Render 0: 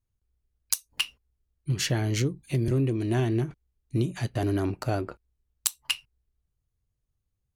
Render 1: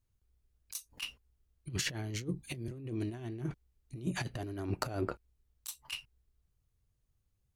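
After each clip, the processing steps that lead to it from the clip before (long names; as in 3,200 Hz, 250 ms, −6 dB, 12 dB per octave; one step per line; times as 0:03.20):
compressor whose output falls as the input rises −31 dBFS, ratio −0.5
level −4.5 dB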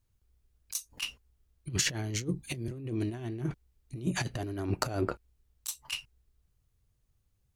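dynamic equaliser 6,600 Hz, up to +5 dB, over −57 dBFS, Q 1.7
level +4 dB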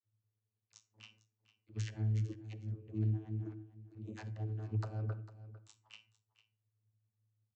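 channel vocoder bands 32, saw 108 Hz
single-tap delay 451 ms −16 dB
on a send at −16 dB: convolution reverb, pre-delay 47 ms
on the sum: level −3.5 dB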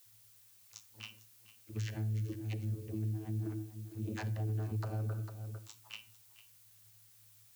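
downward compressor, threshold −38 dBFS, peak gain reduction 8.5 dB
brickwall limiter −39 dBFS, peak gain reduction 6.5 dB
background noise blue −71 dBFS
level +8.5 dB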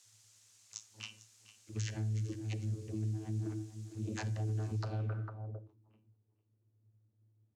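low-pass filter sweep 6,900 Hz → 320 Hz, 0:04.74–0:05.78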